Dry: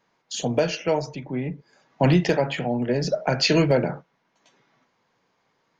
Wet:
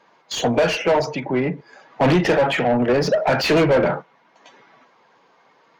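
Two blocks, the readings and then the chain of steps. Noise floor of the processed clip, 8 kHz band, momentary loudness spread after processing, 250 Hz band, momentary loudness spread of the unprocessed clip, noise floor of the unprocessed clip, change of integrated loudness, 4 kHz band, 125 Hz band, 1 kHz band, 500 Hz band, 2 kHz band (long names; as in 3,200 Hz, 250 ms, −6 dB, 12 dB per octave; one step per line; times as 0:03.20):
−58 dBFS, can't be measured, 8 LU, +3.0 dB, 12 LU, −70 dBFS, +4.0 dB, +2.0 dB, −0.5 dB, +7.5 dB, +5.5 dB, +7.0 dB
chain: spectral magnitudes quantised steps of 15 dB
mid-hump overdrive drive 24 dB, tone 1,600 Hz, clips at −8 dBFS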